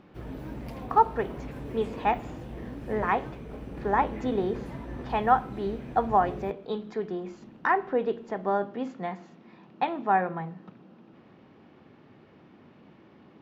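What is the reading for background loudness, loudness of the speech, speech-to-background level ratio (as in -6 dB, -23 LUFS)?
-40.0 LUFS, -28.5 LUFS, 11.5 dB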